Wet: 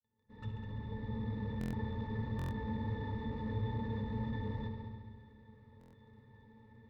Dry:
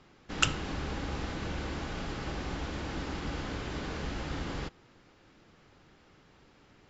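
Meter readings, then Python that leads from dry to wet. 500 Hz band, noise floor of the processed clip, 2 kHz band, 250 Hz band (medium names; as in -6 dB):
-5.0 dB, -63 dBFS, -13.0 dB, -1.0 dB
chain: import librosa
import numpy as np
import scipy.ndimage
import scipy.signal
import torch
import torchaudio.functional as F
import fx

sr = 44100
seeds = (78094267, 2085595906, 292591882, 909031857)

p1 = fx.fade_in_head(x, sr, length_s=1.89)
p2 = fx.schmitt(p1, sr, flips_db=-40.0)
p3 = p1 + (p2 * librosa.db_to_amplitude(-9.0))
p4 = fx.peak_eq(p3, sr, hz=6900.0, db=-6.5, octaves=0.59)
p5 = fx.echo_heads(p4, sr, ms=68, heads='all three', feedback_pct=53, wet_db=-15)
p6 = fx.room_shoebox(p5, sr, seeds[0], volume_m3=3300.0, walls='furnished', distance_m=0.94)
p7 = fx.dmg_crackle(p6, sr, seeds[1], per_s=17.0, level_db=-46.0)
p8 = 10.0 ** (-34.5 / 20.0) * np.tanh(p7 / 10.0 ** (-34.5 / 20.0))
p9 = fx.low_shelf(p8, sr, hz=100.0, db=7.5)
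p10 = fx.octave_resonator(p9, sr, note='A', decay_s=0.13)
p11 = fx.buffer_glitch(p10, sr, at_s=(1.59, 2.37, 5.79), block=1024, repeats=5)
y = p11 * librosa.db_to_amplitude(9.0)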